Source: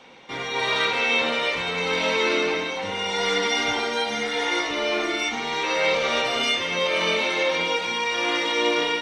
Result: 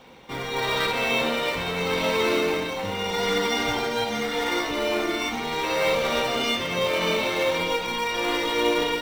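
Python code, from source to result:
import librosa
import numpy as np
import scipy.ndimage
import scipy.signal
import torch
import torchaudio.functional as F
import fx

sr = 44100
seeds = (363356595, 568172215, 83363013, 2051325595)

p1 = fx.low_shelf(x, sr, hz=130.0, db=11.0)
p2 = fx.sample_hold(p1, sr, seeds[0], rate_hz=3300.0, jitter_pct=0)
p3 = p1 + F.gain(torch.from_numpy(p2), -8.0).numpy()
y = F.gain(torch.from_numpy(p3), -3.0).numpy()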